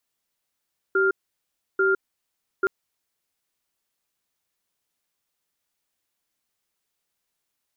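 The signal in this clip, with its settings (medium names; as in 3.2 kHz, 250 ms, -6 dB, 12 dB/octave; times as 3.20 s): cadence 385 Hz, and 1.4 kHz, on 0.16 s, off 0.68 s, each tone -20 dBFS 1.72 s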